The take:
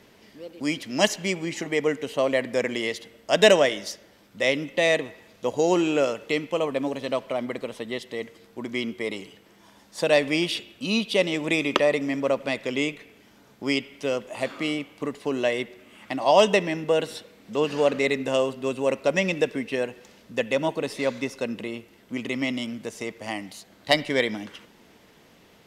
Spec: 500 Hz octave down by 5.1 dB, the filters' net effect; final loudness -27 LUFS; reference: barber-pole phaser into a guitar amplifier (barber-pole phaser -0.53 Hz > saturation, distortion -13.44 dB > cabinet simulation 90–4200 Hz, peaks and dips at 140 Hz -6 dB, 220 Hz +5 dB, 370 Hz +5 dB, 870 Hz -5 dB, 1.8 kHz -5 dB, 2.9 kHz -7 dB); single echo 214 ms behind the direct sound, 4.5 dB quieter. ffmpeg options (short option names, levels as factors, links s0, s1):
-filter_complex "[0:a]equalizer=f=500:t=o:g=-7.5,aecho=1:1:214:0.596,asplit=2[s0][s1];[s1]afreqshift=-0.53[s2];[s0][s2]amix=inputs=2:normalize=1,asoftclip=threshold=0.112,highpass=90,equalizer=f=140:t=q:w=4:g=-6,equalizer=f=220:t=q:w=4:g=5,equalizer=f=370:t=q:w=4:g=5,equalizer=f=870:t=q:w=4:g=-5,equalizer=f=1800:t=q:w=4:g=-5,equalizer=f=2900:t=q:w=4:g=-7,lowpass=f=4200:w=0.5412,lowpass=f=4200:w=1.3066,volume=1.78"